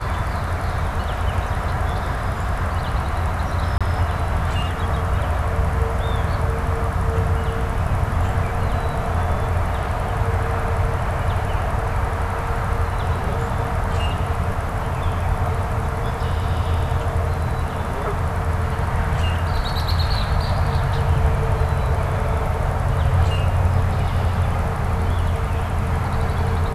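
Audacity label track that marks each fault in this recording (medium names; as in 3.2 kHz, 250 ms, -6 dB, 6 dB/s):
3.780000	3.810000	dropout 26 ms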